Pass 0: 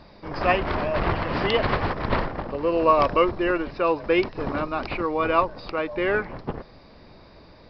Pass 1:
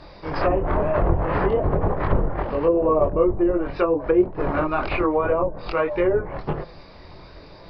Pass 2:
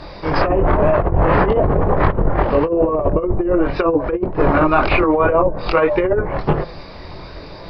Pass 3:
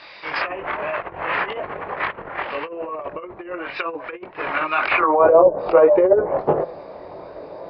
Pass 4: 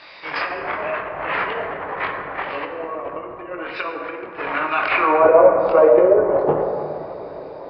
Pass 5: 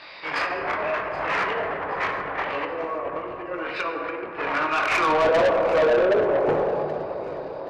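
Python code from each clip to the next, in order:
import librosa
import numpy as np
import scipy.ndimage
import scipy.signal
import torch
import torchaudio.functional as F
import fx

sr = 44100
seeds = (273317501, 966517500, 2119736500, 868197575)

y1 = fx.chorus_voices(x, sr, voices=4, hz=0.47, base_ms=23, depth_ms=3.0, mix_pct=45)
y1 = fx.env_lowpass_down(y1, sr, base_hz=510.0, full_db=-21.5)
y1 = fx.peak_eq(y1, sr, hz=230.0, db=-10.0, octaves=0.34)
y1 = F.gain(torch.from_numpy(y1), 8.5).numpy()
y2 = fx.over_compress(y1, sr, threshold_db=-21.0, ratio=-0.5)
y2 = F.gain(torch.from_numpy(y2), 7.5).numpy()
y3 = fx.filter_sweep_bandpass(y2, sr, from_hz=2500.0, to_hz=580.0, start_s=4.77, end_s=5.3, q=1.8)
y3 = F.gain(torch.from_numpy(y3), 5.0).numpy()
y4 = fx.rev_plate(y3, sr, seeds[0], rt60_s=2.7, hf_ratio=0.4, predelay_ms=0, drr_db=3.0)
y4 = F.gain(torch.from_numpy(y4), -1.0).numpy()
y5 = fx.self_delay(y4, sr, depth_ms=0.066)
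y5 = 10.0 ** (-16.0 / 20.0) * np.tanh(y5 / 10.0 ** (-16.0 / 20.0))
y5 = fx.echo_feedback(y5, sr, ms=775, feedback_pct=42, wet_db=-17.0)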